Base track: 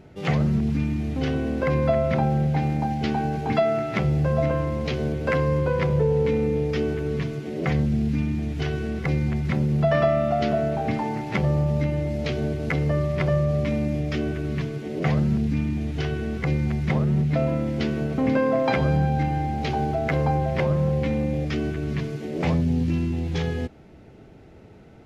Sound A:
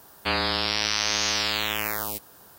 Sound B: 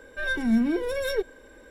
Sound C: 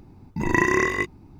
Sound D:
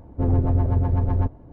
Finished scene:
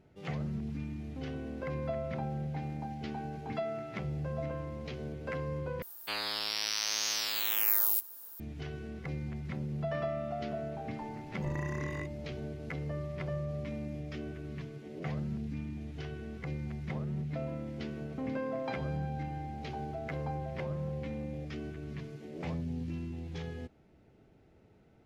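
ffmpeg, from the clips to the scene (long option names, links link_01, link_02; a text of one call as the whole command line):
ffmpeg -i bed.wav -i cue0.wav -i cue1.wav -i cue2.wav -filter_complex "[0:a]volume=-14.5dB[link_01];[1:a]aemphasis=mode=production:type=bsi[link_02];[3:a]acompressor=threshold=-37dB:ratio=4:attack=7.3:release=64:knee=1:detection=peak[link_03];[link_01]asplit=2[link_04][link_05];[link_04]atrim=end=5.824[link_06];[link_02]atrim=end=2.58,asetpts=PTS-STARTPTS,volume=-12.5dB[link_07];[link_05]atrim=start=8.396[link_08];[link_03]atrim=end=1.39,asetpts=PTS-STARTPTS,volume=-6.5dB,afade=type=in:duration=0.004:curve=hsin,afade=type=out:start_time=1.386:duration=0.004:curve=hsin,adelay=11010[link_09];[link_06][link_07]acrossfade=duration=0.004:curve1=hsin:curve2=hsin[link_10];[link_10][link_08]acrossfade=duration=0.004:curve1=hsin:curve2=hsin[link_11];[link_11][link_09]amix=inputs=2:normalize=0" out.wav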